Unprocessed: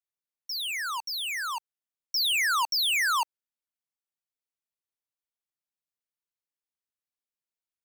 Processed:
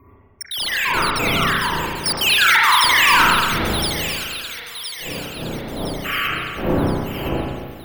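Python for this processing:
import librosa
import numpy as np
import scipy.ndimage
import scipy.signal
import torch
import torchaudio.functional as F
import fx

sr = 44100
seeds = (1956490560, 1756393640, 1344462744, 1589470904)

y = fx.block_reorder(x, sr, ms=85.0, group=2)
y = fx.dmg_wind(y, sr, seeds[0], corner_hz=480.0, level_db=-41.0)
y = fx.spec_gate(y, sr, threshold_db=-30, keep='strong')
y = fx.noise_reduce_blind(y, sr, reduce_db=19)
y = fx.spec_paint(y, sr, seeds[1], shape='noise', start_s=6.04, length_s=0.24, low_hz=1100.0, high_hz=3200.0, level_db=-34.0)
y = np.repeat(y[::3], 3)[:len(y)]
y = fx.echo_wet_highpass(y, sr, ms=1015, feedback_pct=50, hz=3700.0, wet_db=-4)
y = fx.rev_spring(y, sr, rt60_s=1.6, pass_ms=(31, 37), chirp_ms=75, drr_db=-6.5)
y = np.clip(y, -10.0 ** (-13.5 / 20.0), 10.0 ** (-13.5 / 20.0))
y = F.gain(torch.from_numpy(y), 6.5).numpy()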